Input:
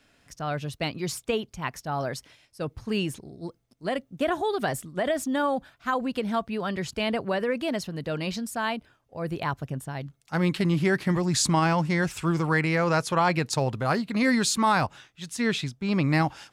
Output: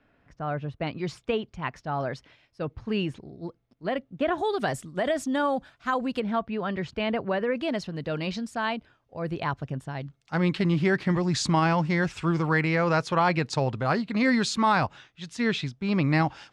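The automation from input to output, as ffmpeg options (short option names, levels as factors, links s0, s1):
-af "asetnsamples=n=441:p=0,asendcmd='0.87 lowpass f 3200;4.38 lowpass f 7700;6.2 lowpass f 2900;7.56 lowpass f 4900',lowpass=1700"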